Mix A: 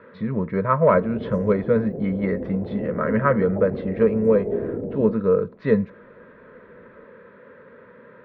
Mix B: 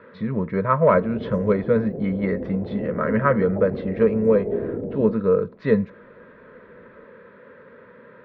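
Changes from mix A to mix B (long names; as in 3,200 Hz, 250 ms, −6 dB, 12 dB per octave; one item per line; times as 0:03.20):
background: add high-shelf EQ 4,100 Hz −9.5 dB
master: add high-shelf EQ 5,200 Hz +7.5 dB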